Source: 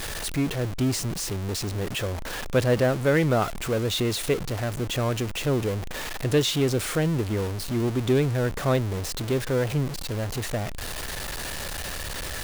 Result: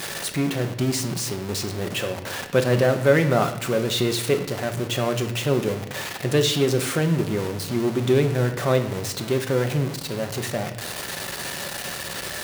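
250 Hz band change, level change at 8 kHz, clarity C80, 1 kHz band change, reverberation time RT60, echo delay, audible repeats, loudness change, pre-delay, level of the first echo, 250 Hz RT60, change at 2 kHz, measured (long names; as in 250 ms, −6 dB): +2.0 dB, +2.5 dB, 12.5 dB, +3.0 dB, 0.75 s, no echo audible, no echo audible, +2.5 dB, 5 ms, no echo audible, 1.2 s, +3.0 dB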